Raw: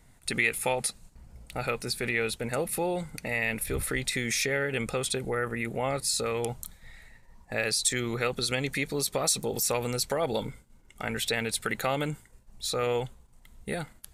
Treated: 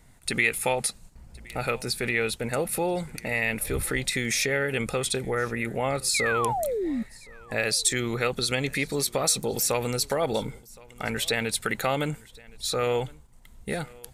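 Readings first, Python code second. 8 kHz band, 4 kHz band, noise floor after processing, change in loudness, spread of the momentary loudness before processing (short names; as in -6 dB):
+2.5 dB, +2.5 dB, -51 dBFS, +2.5 dB, 9 LU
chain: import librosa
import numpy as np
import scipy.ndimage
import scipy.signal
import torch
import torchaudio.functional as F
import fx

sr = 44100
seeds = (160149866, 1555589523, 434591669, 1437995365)

y = fx.spec_paint(x, sr, seeds[0], shape='fall', start_s=6.14, length_s=0.89, low_hz=210.0, high_hz=2500.0, level_db=-30.0)
y = y + 10.0 ** (-24.0 / 20.0) * np.pad(y, (int(1067 * sr / 1000.0), 0))[:len(y)]
y = F.gain(torch.from_numpy(y), 2.5).numpy()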